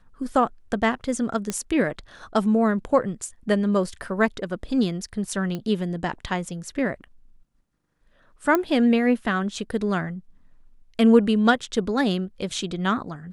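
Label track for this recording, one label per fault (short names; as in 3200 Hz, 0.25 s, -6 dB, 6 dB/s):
1.500000	1.500000	pop -12 dBFS
5.550000	5.550000	pop -18 dBFS
8.550000	8.550000	pop -8 dBFS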